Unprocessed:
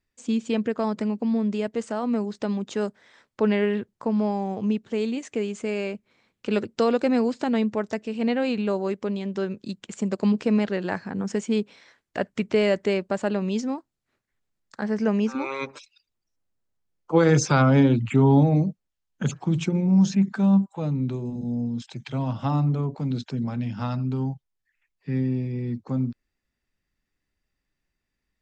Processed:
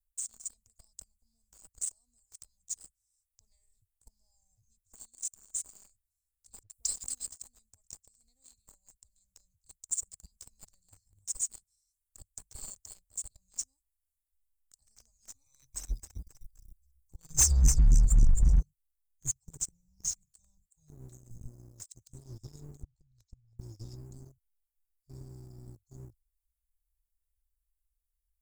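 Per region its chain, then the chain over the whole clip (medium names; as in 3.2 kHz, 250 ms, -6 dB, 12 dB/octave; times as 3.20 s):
6.63–7.27 s: treble shelf 2.5 kHz +11 dB + phase dispersion highs, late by 69 ms, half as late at 1.4 kHz
15.46–18.60 s: compressor with a negative ratio -20 dBFS, ratio -0.5 + frequency-shifting echo 266 ms, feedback 43%, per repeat -94 Hz, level -7 dB
22.83–23.59 s: low-pass 4.2 kHz + compression 5:1, threshold -33 dBFS
whole clip: inverse Chebyshev band-stop 190–3100 Hz, stop band 60 dB; treble shelf 5 kHz +4.5 dB; waveshaping leveller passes 3; trim +7 dB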